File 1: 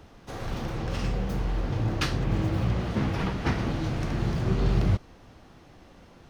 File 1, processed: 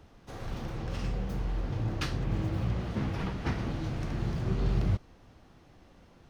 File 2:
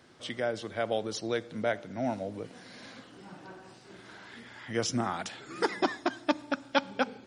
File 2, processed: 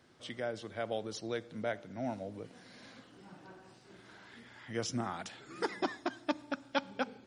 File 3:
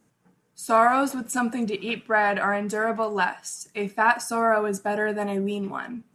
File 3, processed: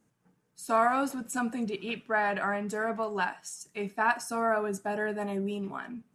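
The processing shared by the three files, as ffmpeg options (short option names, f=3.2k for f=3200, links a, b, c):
-af "lowshelf=f=170:g=3,volume=-6.5dB"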